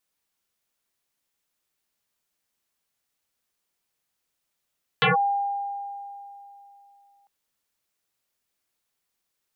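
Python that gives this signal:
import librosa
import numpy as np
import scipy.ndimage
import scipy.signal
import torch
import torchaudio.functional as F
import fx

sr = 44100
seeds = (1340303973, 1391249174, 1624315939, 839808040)

y = fx.fm2(sr, length_s=2.25, level_db=-15.5, carrier_hz=803.0, ratio=0.39, index=9.4, index_s=0.14, decay_s=3.06, shape='linear')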